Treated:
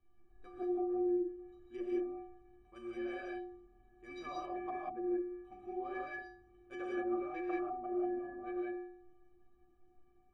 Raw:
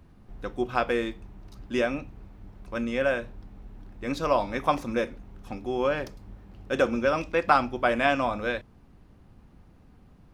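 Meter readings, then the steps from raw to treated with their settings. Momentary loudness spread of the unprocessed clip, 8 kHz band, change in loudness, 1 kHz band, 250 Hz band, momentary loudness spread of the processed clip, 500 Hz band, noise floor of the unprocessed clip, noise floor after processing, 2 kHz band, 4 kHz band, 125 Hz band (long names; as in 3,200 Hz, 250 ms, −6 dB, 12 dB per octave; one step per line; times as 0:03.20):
15 LU, can't be measured, −12.0 dB, −15.0 dB, −7.0 dB, 16 LU, −11.5 dB, −55 dBFS, −66 dBFS, −19.0 dB, −23.0 dB, −26.0 dB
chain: adaptive Wiener filter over 9 samples
stiff-string resonator 350 Hz, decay 0.76 s, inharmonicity 0.03
treble cut that deepens with the level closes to 380 Hz, closed at −41 dBFS
reverb whose tail is shaped and stops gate 210 ms rising, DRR −3 dB
level +5 dB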